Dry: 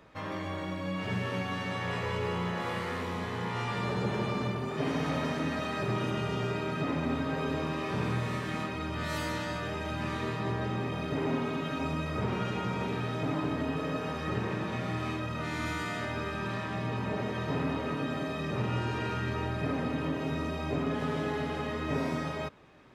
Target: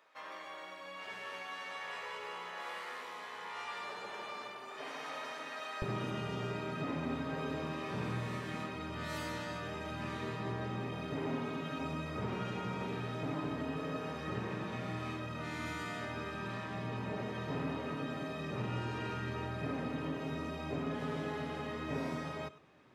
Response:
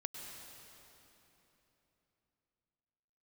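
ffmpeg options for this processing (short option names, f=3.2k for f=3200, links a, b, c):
-filter_complex "[0:a]asetnsamples=n=441:p=0,asendcmd='5.82 highpass f 87',highpass=710[a];[1:a]atrim=start_sample=2205,atrim=end_sample=4410[b];[a][b]afir=irnorm=-1:irlink=0,volume=-2.5dB"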